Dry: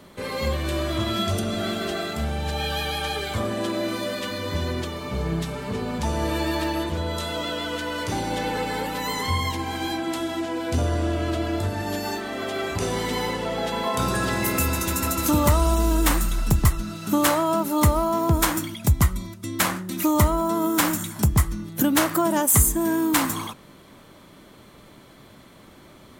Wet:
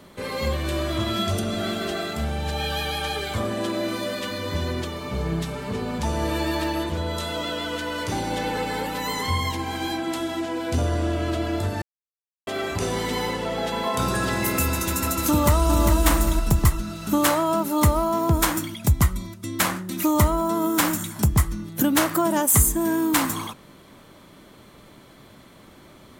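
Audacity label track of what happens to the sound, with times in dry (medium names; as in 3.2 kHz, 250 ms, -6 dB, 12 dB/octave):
11.820000	12.470000	mute
15.290000	15.990000	echo throw 400 ms, feedback 30%, level -4.5 dB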